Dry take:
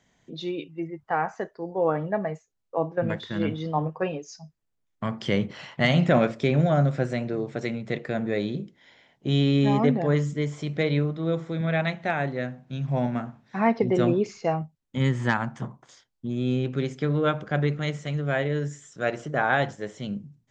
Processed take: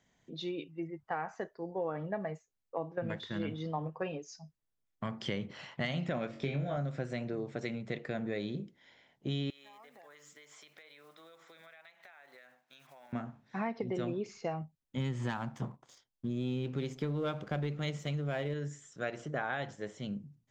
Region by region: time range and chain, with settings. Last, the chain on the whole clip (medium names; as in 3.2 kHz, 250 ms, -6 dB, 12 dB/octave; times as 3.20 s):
6.31–6.77 s: distance through air 74 m + flutter echo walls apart 3.7 m, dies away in 0.31 s
9.50–13.13 s: block-companded coder 7-bit + high-pass 1 kHz + compression 20:1, threshold -45 dBFS
14.98–18.54 s: peaking EQ 1.7 kHz -5 dB 0.7 oct + waveshaping leveller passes 1
whole clip: dynamic bell 3.4 kHz, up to +3 dB, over -39 dBFS, Q 0.73; compression, threshold -25 dBFS; trim -6.5 dB